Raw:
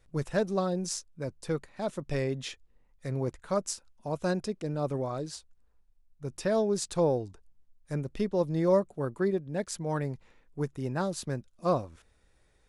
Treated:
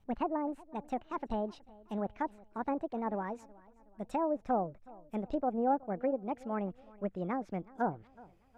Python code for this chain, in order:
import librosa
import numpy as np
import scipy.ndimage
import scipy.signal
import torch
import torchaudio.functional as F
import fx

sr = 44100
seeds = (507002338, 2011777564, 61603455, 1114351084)

p1 = fx.speed_glide(x, sr, from_pct=163, to_pct=133)
p2 = fx.env_lowpass_down(p1, sr, base_hz=970.0, full_db=-24.5)
p3 = fx.high_shelf(p2, sr, hz=2500.0, db=-9.5)
p4 = p3 + fx.echo_feedback(p3, sr, ms=371, feedback_pct=44, wet_db=-22.5, dry=0)
y = p4 * 10.0 ** (-3.0 / 20.0)